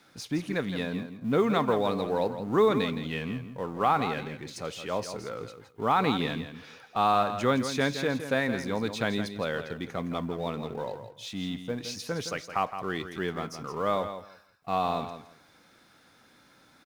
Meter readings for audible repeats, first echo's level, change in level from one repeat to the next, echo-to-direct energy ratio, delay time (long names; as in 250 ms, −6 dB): 2, −10.0 dB, −15.0 dB, −10.0 dB, 166 ms